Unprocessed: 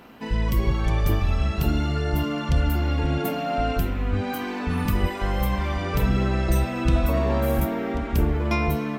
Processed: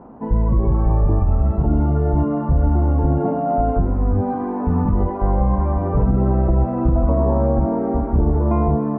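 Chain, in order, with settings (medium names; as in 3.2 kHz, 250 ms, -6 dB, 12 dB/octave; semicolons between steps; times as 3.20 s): Chebyshev low-pass 940 Hz, order 3; peak limiter -16 dBFS, peak gain reduction 6.5 dB; trim +7.5 dB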